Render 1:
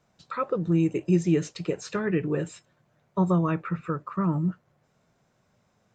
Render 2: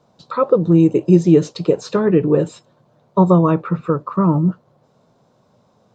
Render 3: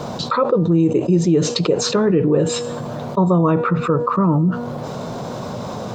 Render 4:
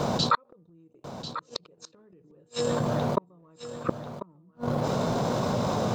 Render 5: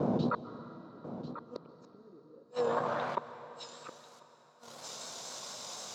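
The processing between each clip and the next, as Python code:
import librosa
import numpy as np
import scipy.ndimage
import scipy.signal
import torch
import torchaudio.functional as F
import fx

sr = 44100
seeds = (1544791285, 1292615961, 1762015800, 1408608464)

y1 = fx.graphic_eq_10(x, sr, hz=(125, 250, 500, 1000, 2000, 4000), db=(7, 8, 10, 10, -6, 9))
y1 = y1 * 10.0 ** (1.0 / 20.0)
y2 = fx.comb_fb(y1, sr, f0_hz=240.0, decay_s=0.66, harmonics='all', damping=0.0, mix_pct=50)
y2 = fx.env_flatten(y2, sr, amount_pct=70)
y3 = fx.transient(y2, sr, attack_db=-4, sustain_db=-8)
y3 = fx.gate_flip(y3, sr, shuts_db=-12.0, range_db=-42)
y3 = y3 + 10.0 ** (-12.0 / 20.0) * np.pad(y3, (int(1042 * sr / 1000.0), 0))[:len(y3)]
y3 = y3 * 10.0 ** (1.5 / 20.0)
y4 = fx.vibrato(y3, sr, rate_hz=4.0, depth_cents=53.0)
y4 = fx.filter_sweep_bandpass(y4, sr, from_hz=290.0, to_hz=7500.0, start_s=1.97, end_s=4.01, q=1.2)
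y4 = fx.rev_plate(y4, sr, seeds[0], rt60_s=4.2, hf_ratio=0.95, predelay_ms=120, drr_db=13.0)
y4 = y4 * 10.0 ** (2.0 / 20.0)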